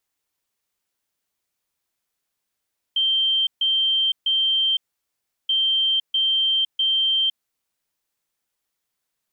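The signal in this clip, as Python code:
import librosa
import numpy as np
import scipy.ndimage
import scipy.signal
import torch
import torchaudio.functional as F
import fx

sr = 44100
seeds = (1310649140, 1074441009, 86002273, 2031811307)

y = fx.beep_pattern(sr, wave='sine', hz=3140.0, on_s=0.51, off_s=0.14, beeps=3, pause_s=0.72, groups=2, level_db=-17.0)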